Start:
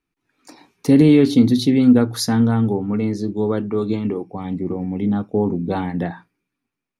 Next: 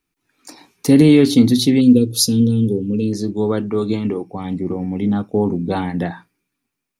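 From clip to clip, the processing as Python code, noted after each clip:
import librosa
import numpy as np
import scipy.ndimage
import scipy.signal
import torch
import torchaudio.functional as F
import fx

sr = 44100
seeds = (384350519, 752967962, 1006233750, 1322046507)

y = fx.high_shelf(x, sr, hz=4300.0, db=9.5)
y = fx.spec_box(y, sr, start_s=1.81, length_s=1.32, low_hz=550.0, high_hz=2400.0, gain_db=-28)
y = F.gain(torch.from_numpy(y), 1.5).numpy()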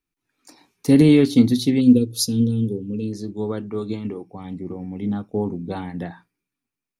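y = fx.low_shelf(x, sr, hz=78.0, db=5.5)
y = fx.upward_expand(y, sr, threshold_db=-20.0, expansion=1.5)
y = F.gain(torch.from_numpy(y), -2.0).numpy()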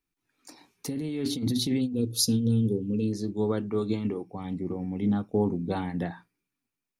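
y = fx.over_compress(x, sr, threshold_db=-21.0, ratio=-1.0)
y = F.gain(torch.from_numpy(y), -4.5).numpy()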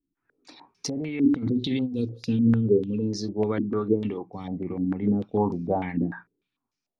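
y = fx.filter_held_lowpass(x, sr, hz=6.7, low_hz=290.0, high_hz=5400.0)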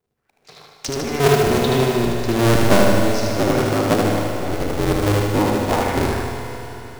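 y = fx.cycle_switch(x, sr, every=2, mode='inverted')
y = fx.echo_feedback(y, sr, ms=76, feedback_pct=60, wet_db=-3.5)
y = fx.rev_schroeder(y, sr, rt60_s=4.0, comb_ms=30, drr_db=4.0)
y = F.gain(torch.from_numpy(y), 4.0).numpy()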